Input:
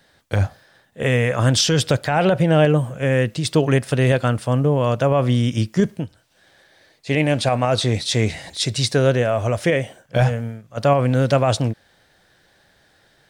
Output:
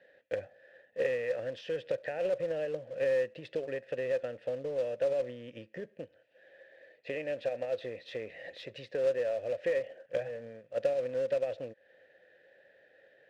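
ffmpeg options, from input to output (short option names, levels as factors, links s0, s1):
-filter_complex "[0:a]acompressor=threshold=0.0398:ratio=10,asplit=3[s0][s1][s2];[s0]bandpass=f=530:t=q:w=8,volume=1[s3];[s1]bandpass=f=1840:t=q:w=8,volume=0.501[s4];[s2]bandpass=f=2480:t=q:w=8,volume=0.355[s5];[s3][s4][s5]amix=inputs=3:normalize=0,acrusher=bits=4:mode=log:mix=0:aa=0.000001,adynamicsmooth=sensitivity=4.5:basefreq=3400,volume=2.37"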